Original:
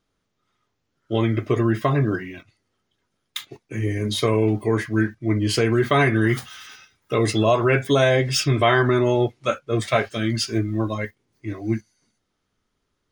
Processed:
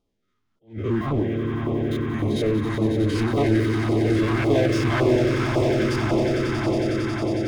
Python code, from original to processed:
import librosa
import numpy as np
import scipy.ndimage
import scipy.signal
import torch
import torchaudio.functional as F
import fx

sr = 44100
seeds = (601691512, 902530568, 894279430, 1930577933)

p1 = fx.spec_steps(x, sr, hold_ms=100)
p2 = fx.stretch_vocoder(p1, sr, factor=0.57)
p3 = fx.echo_swell(p2, sr, ms=91, loudest=8, wet_db=-9.5)
p4 = 10.0 ** (-20.0 / 20.0) * (np.abs((p3 / 10.0 ** (-20.0 / 20.0) + 3.0) % 4.0 - 2.0) - 1.0)
p5 = p3 + (p4 * 10.0 ** (-3.0 / 20.0))
p6 = fx.peak_eq(p5, sr, hz=130.0, db=-8.0, octaves=0.62)
p7 = fx.filter_lfo_notch(p6, sr, shape='saw_down', hz=1.8, low_hz=420.0, high_hz=1800.0, q=0.73)
p8 = fx.high_shelf(p7, sr, hz=2700.0, db=-10.0)
y = fx.attack_slew(p8, sr, db_per_s=210.0)